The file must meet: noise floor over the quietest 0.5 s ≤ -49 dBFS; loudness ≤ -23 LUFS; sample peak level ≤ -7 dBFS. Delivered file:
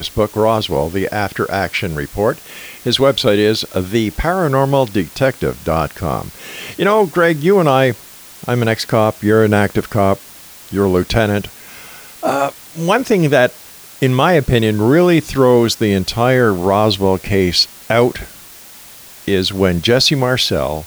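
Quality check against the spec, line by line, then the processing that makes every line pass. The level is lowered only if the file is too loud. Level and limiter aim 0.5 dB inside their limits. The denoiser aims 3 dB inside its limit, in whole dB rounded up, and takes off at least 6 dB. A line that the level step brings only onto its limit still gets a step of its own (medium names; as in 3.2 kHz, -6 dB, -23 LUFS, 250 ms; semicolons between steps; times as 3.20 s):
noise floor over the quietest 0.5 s -38 dBFS: fail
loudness -15.0 LUFS: fail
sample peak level -1.5 dBFS: fail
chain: noise reduction 6 dB, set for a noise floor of -38 dBFS; trim -8.5 dB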